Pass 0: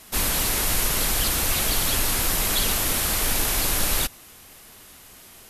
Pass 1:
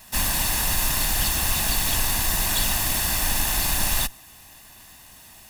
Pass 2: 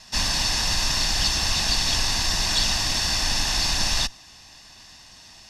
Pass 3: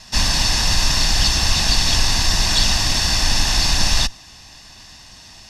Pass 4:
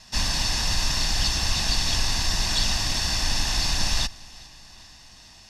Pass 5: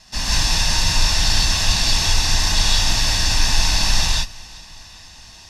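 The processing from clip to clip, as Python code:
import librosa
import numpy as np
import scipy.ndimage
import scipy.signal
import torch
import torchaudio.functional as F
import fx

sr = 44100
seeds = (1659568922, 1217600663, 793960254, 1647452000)

y1 = fx.lower_of_two(x, sr, delay_ms=1.1)
y1 = F.gain(torch.from_numpy(y1), 1.5).numpy()
y2 = fx.lowpass_res(y1, sr, hz=5300.0, q=3.3)
y2 = F.gain(torch.from_numpy(y2), -1.0).numpy()
y3 = fx.low_shelf(y2, sr, hz=190.0, db=5.0)
y3 = F.gain(torch.from_numpy(y3), 4.5).numpy()
y4 = fx.echo_feedback(y3, sr, ms=406, feedback_pct=54, wet_db=-23)
y4 = F.gain(torch.from_numpy(y4), -7.0).numpy()
y5 = fx.rev_gated(y4, sr, seeds[0], gate_ms=200, shape='rising', drr_db=-5.0)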